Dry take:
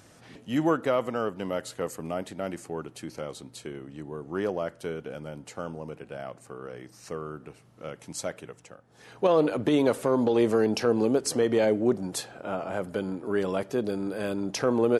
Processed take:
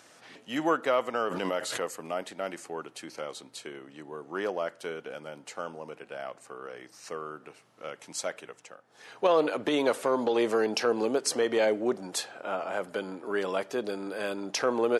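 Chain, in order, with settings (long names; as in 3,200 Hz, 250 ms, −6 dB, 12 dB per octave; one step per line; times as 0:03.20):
meter weighting curve A
0:01.14–0:01.81: background raised ahead of every attack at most 22 dB per second
level +1.5 dB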